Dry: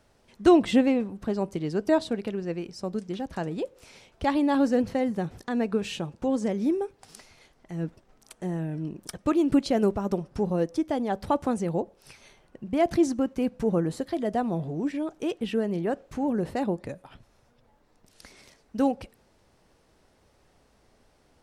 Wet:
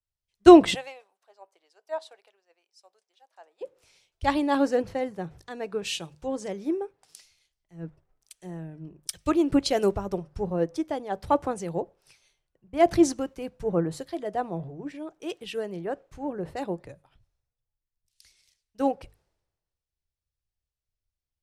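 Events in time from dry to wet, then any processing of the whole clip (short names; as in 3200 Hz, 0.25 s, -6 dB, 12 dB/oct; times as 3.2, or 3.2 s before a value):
0.74–3.61 ladder high-pass 590 Hz, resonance 40%
whole clip: bell 230 Hz -13.5 dB 0.32 oct; notches 50/100/150 Hz; three-band expander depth 100%; gain -1.5 dB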